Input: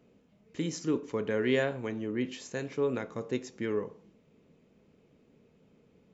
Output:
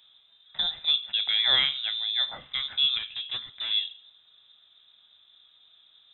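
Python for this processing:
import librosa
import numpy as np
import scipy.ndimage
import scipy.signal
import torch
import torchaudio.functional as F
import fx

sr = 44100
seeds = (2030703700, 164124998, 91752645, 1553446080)

y = fx.clip_hard(x, sr, threshold_db=-33.5, at=(2.98, 3.71))
y = fx.freq_invert(y, sr, carrier_hz=3800)
y = F.gain(torch.from_numpy(y), 4.5).numpy()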